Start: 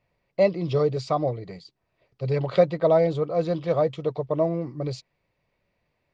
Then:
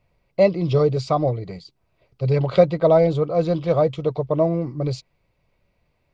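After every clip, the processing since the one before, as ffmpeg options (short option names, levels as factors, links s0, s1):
-af "lowshelf=f=87:g=10.5,bandreject=f=1800:w=8.9,volume=1.5"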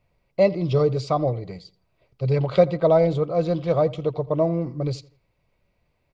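-filter_complex "[0:a]asplit=2[s0][s1];[s1]adelay=83,lowpass=f=3400:p=1,volume=0.1,asplit=2[s2][s3];[s3]adelay=83,lowpass=f=3400:p=1,volume=0.36,asplit=2[s4][s5];[s5]adelay=83,lowpass=f=3400:p=1,volume=0.36[s6];[s0][s2][s4][s6]amix=inputs=4:normalize=0,volume=0.794"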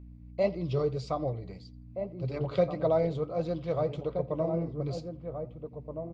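-filter_complex "[0:a]aeval=exprs='val(0)+0.0141*(sin(2*PI*60*n/s)+sin(2*PI*2*60*n/s)/2+sin(2*PI*3*60*n/s)/3+sin(2*PI*4*60*n/s)/4+sin(2*PI*5*60*n/s)/5)':c=same,flanger=delay=3.3:depth=7.6:regen=-68:speed=1.7:shape=sinusoidal,asplit=2[s0][s1];[s1]adelay=1574,volume=0.447,highshelf=f=4000:g=-35.4[s2];[s0][s2]amix=inputs=2:normalize=0,volume=0.562"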